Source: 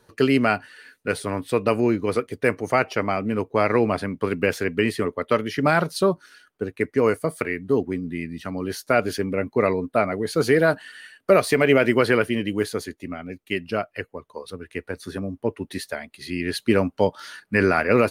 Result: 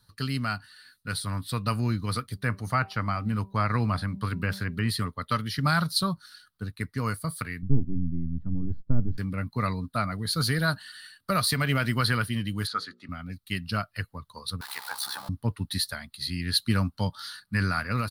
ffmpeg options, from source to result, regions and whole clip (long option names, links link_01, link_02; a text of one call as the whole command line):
ffmpeg -i in.wav -filter_complex "[0:a]asettb=1/sr,asplit=3[link_01][link_02][link_03];[link_01]atrim=end=2.334[link_04];[link_02]atrim=start=2.33:end=4.89,asetpts=PTS-STARTPTS,afade=type=in:duration=0.004:curve=qsin,afade=type=out:start_time=2.556:duration=0.004:curve=qsin,bandreject=frequency=194.3:width_type=h:width=4,bandreject=frequency=388.6:width_type=h:width=4,bandreject=frequency=582.9:width_type=h:width=4,bandreject=frequency=777.2:width_type=h:width=4,bandreject=frequency=971.5:width_type=h:width=4,acrossover=split=2700[link_05][link_06];[link_06]acompressor=threshold=-45dB:ratio=4:attack=1:release=60[link_07];[link_05][link_07]amix=inputs=2:normalize=0[link_08];[link_03]atrim=start=4.886[link_09];[link_04][link_08]acrossfade=duration=0.004:curve1=hsin:curve2=qsin[link_10];[link_10][link_09]acrossfade=duration=0.004:curve1=qsin:curve2=hsin,asettb=1/sr,asplit=3[link_11][link_12][link_13];[link_11]atrim=end=7.624[link_14];[link_12]atrim=start=7.62:end=9.18,asetpts=PTS-STARTPTS,afade=type=in:duration=0.004:curve=qsin,afade=type=out:start_time=1.556:duration=0.004:curve=qsin,aeval=exprs='if(lt(val(0),0),0.447*val(0),val(0))':channel_layout=same,lowpass=frequency=340:width_type=q:width=1.8,lowshelf=frequency=160:gain=11.5[link_15];[link_13]atrim=start=9.176[link_16];[link_14][link_15]acrossfade=duration=0.004:curve1=hsin:curve2=qsin[link_17];[link_17][link_16]acrossfade=duration=0.004:curve1=qsin:curve2=hsin,asettb=1/sr,asplit=3[link_18][link_19][link_20];[link_18]atrim=end=12.674[link_21];[link_19]atrim=start=12.67:end=13.09,asetpts=PTS-STARTPTS,afade=type=in:duration=0.004:curve=qsin,afade=type=out:start_time=0.416:duration=0.004:curve=qsin,highpass=300,lowpass=4300,equalizer=frequency=1300:width_type=o:width=0.36:gain=14,bandreject=frequency=60:width_type=h:width=6,bandreject=frequency=120:width_type=h:width=6,bandreject=frequency=180:width_type=h:width=6,bandreject=frequency=240:width_type=h:width=6,bandreject=frequency=300:width_type=h:width=6,bandreject=frequency=360:width_type=h:width=6,bandreject=frequency=420:width_type=h:width=6,bandreject=frequency=480:width_type=h:width=6,bandreject=frequency=540:width_type=h:width=6[link_22];[link_20]atrim=start=13.086[link_23];[link_21][link_22]acrossfade=duration=0.004:curve1=hsin:curve2=qsin[link_24];[link_24][link_23]acrossfade=duration=0.004:curve1=qsin:curve2=hsin,asettb=1/sr,asplit=3[link_25][link_26][link_27];[link_25]atrim=end=14.614[link_28];[link_26]atrim=start=14.61:end=15.29,asetpts=PTS-STARTPTS,afade=type=in:duration=0.004:curve=qsin,afade=type=out:start_time=0.676:duration=0.004:curve=qsin,aeval=exprs='val(0)+0.5*0.02*sgn(val(0))':channel_layout=same,highpass=frequency=840:width_type=q:width=6.5,tremolo=f=66:d=0.667[link_29];[link_27]atrim=start=15.286[link_30];[link_28][link_29]acrossfade=duration=0.004:curve1=hsin:curve2=qsin[link_31];[link_31][link_30]acrossfade=duration=0.004:curve1=qsin:curve2=hsin,dynaudnorm=framelen=470:gausssize=5:maxgain=11.5dB,firequalizer=gain_entry='entry(120,0);entry(380,-25);entry(1200,-6);entry(2400,-15);entry(4100,4);entry(6500,-10);entry(9700,0)':delay=0.05:min_phase=1" out.wav